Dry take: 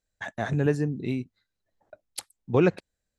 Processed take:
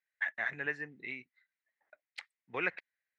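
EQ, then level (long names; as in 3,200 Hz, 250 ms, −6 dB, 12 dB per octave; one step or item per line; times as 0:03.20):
resonant band-pass 2,000 Hz, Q 5
high-frequency loss of the air 72 metres
+9.0 dB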